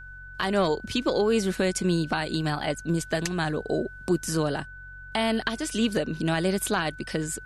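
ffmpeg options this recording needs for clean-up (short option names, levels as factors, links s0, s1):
-af "bandreject=f=46:t=h:w=4,bandreject=f=92:t=h:w=4,bandreject=f=138:t=h:w=4,bandreject=f=1500:w=30,agate=range=0.0891:threshold=0.0178"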